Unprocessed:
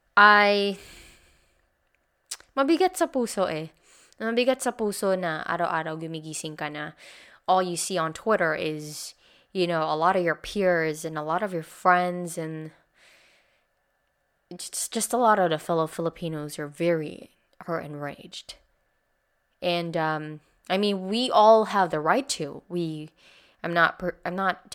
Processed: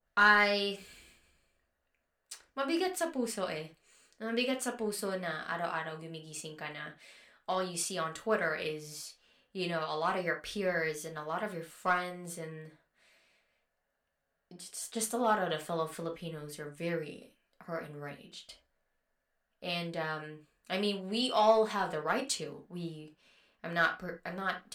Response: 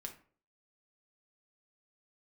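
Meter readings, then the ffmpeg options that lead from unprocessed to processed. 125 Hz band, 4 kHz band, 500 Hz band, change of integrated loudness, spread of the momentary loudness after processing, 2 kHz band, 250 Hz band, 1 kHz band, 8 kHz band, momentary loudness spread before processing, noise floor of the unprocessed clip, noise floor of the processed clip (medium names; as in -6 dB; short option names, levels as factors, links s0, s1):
-9.0 dB, -6.0 dB, -9.5 dB, -8.5 dB, 16 LU, -6.5 dB, -9.5 dB, -10.5 dB, -6.5 dB, 16 LU, -72 dBFS, -82 dBFS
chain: -filter_complex "[0:a]asplit=2[s0][s1];[s1]volume=4.73,asoftclip=hard,volume=0.211,volume=0.398[s2];[s0][s2]amix=inputs=2:normalize=0[s3];[1:a]atrim=start_sample=2205,afade=t=out:st=0.17:d=0.01,atrim=end_sample=7938,asetrate=52920,aresample=44100[s4];[s3][s4]afir=irnorm=-1:irlink=0,adynamicequalizer=threshold=0.0126:dfrequency=1500:dqfactor=0.7:tfrequency=1500:tqfactor=0.7:attack=5:release=100:ratio=0.375:range=3:mode=boostabove:tftype=highshelf,volume=0.398"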